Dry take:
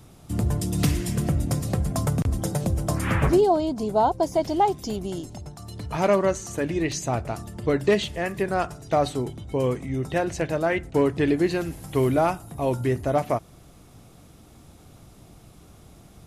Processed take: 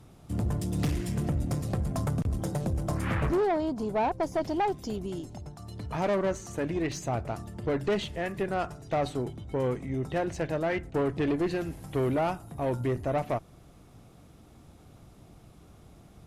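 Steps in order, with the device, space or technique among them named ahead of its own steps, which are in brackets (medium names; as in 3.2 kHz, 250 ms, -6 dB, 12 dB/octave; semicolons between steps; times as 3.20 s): tube preamp driven hard (valve stage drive 20 dB, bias 0.4; treble shelf 3.6 kHz -6.5 dB); trim -2 dB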